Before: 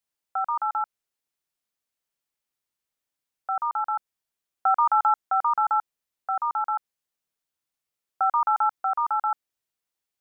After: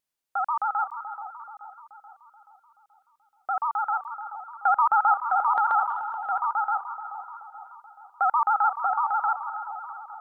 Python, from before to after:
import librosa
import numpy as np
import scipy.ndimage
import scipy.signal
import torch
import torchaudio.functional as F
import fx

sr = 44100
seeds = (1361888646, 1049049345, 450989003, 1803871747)

y = fx.vibrato(x, sr, rate_hz=14.0, depth_cents=91.0)
y = fx.echo_split(y, sr, split_hz=1300.0, low_ms=430, high_ms=325, feedback_pct=52, wet_db=-9.5)
y = fx.transient(y, sr, attack_db=-2, sustain_db=6, at=(5.54, 6.3), fade=0.02)